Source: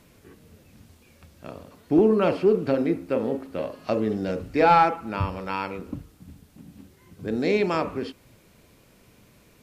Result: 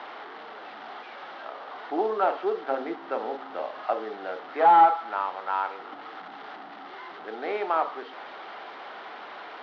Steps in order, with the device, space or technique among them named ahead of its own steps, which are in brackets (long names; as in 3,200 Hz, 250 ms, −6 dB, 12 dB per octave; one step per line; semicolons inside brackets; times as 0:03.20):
digital answering machine (band-pass filter 380–3,200 Hz; linear delta modulator 32 kbit/s, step −34 dBFS; loudspeaker in its box 480–3,300 Hz, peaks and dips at 520 Hz −6 dB, 780 Hz +10 dB, 1,300 Hz +5 dB, 2,500 Hz −9 dB)
0:02.71–0:03.82: parametric band 160 Hz +6 dB 1.8 octaves